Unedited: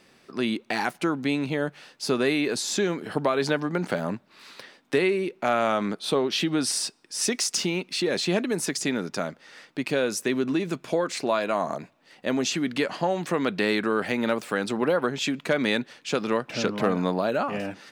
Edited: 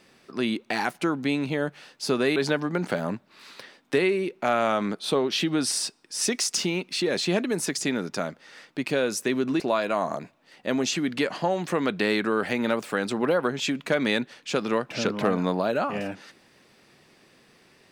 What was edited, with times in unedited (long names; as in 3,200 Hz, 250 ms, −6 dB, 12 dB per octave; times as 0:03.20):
0:02.36–0:03.36: remove
0:10.60–0:11.19: remove